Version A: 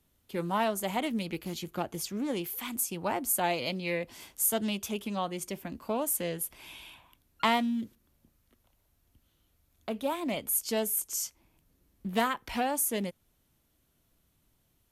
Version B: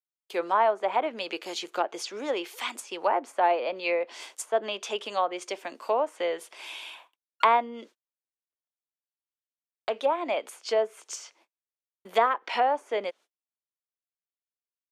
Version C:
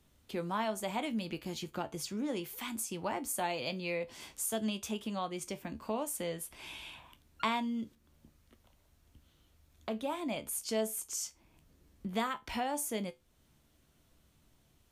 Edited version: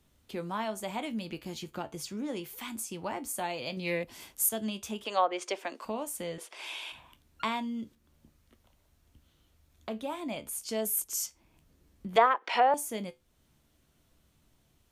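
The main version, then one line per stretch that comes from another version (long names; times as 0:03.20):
C
0:03.77–0:04.49: punch in from A
0:05.05–0:05.85: punch in from B
0:06.38–0:06.92: punch in from B
0:10.85–0:11.26: punch in from A
0:12.16–0:12.74: punch in from B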